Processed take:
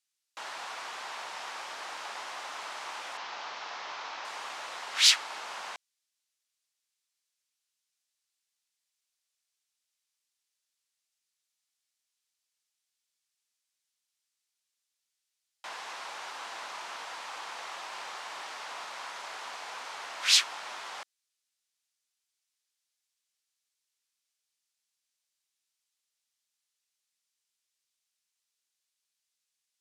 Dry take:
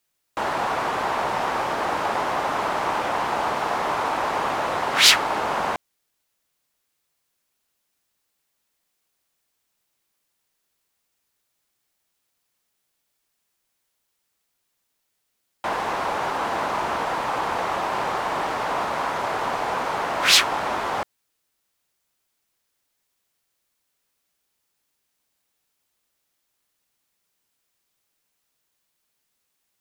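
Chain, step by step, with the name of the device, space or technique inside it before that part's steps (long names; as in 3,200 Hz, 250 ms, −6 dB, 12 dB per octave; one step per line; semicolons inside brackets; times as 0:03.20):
0:03.17–0:04.25: Butterworth low-pass 6,200 Hz 36 dB per octave
piezo pickup straight into a mixer (low-pass filter 6,100 Hz 12 dB per octave; first difference)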